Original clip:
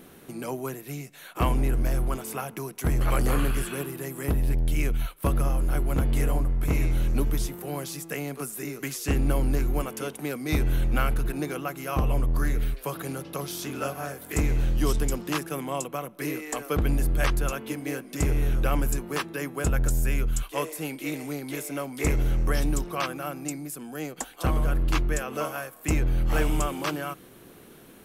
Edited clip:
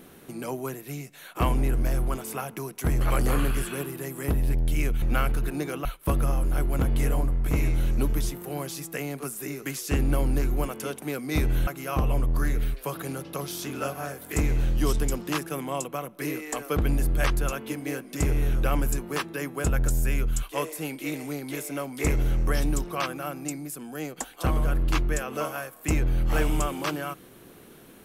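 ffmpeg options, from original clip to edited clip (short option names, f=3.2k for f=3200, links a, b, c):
-filter_complex "[0:a]asplit=4[a][b][c][d];[a]atrim=end=5.022[e];[b]atrim=start=10.838:end=11.672[f];[c]atrim=start=5.018:end=10.842[g];[d]atrim=start=11.668[h];[e][f]acrossfade=d=0.004:c1=hsin:c2=hsin[i];[i][g]acrossfade=d=0.004:c1=hsin:c2=hsin[j];[j][h]acrossfade=d=0.004:c1=hsin:c2=hsin"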